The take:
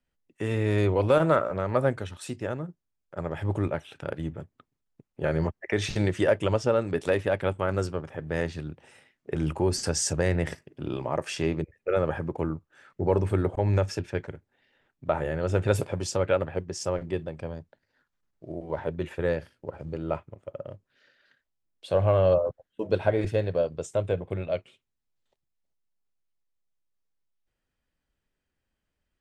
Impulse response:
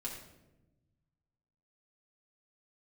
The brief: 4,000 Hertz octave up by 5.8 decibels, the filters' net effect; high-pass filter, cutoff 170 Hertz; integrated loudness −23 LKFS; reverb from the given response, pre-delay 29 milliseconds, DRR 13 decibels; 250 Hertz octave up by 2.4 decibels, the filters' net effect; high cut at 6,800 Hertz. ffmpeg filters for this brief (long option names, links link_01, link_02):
-filter_complex "[0:a]highpass=170,lowpass=6800,equalizer=frequency=250:width_type=o:gain=5,equalizer=frequency=4000:width_type=o:gain=8.5,asplit=2[link_01][link_02];[1:a]atrim=start_sample=2205,adelay=29[link_03];[link_02][link_03]afir=irnorm=-1:irlink=0,volume=-12.5dB[link_04];[link_01][link_04]amix=inputs=2:normalize=0,volume=4dB"